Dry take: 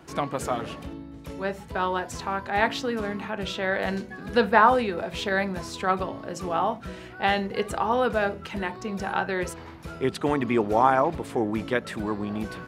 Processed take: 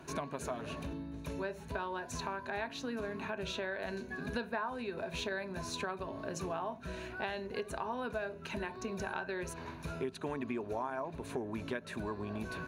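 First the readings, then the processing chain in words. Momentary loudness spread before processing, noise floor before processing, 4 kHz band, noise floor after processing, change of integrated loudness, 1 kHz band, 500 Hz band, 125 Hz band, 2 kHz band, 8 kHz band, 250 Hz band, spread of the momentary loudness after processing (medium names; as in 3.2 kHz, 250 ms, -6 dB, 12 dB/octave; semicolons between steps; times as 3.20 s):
12 LU, -42 dBFS, -10.0 dB, -49 dBFS, -13.5 dB, -16.0 dB, -12.5 dB, -9.5 dB, -12.0 dB, -6.0 dB, -11.5 dB, 3 LU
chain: rippled EQ curve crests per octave 1.5, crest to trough 8 dB; compression 6:1, threshold -33 dBFS, peak gain reduction 20 dB; trim -2.5 dB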